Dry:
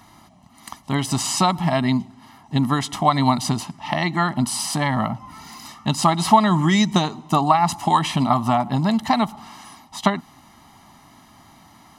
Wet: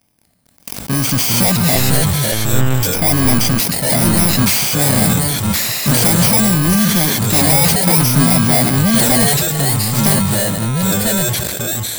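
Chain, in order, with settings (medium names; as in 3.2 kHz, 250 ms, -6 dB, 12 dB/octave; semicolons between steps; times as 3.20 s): bit-reversed sample order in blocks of 32 samples; waveshaping leveller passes 5; 1.75–2.83 s: monotone LPC vocoder at 8 kHz 130 Hz; ever faster or slower copies 233 ms, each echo -3 st, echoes 2; decay stretcher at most 24 dB/s; trim -8 dB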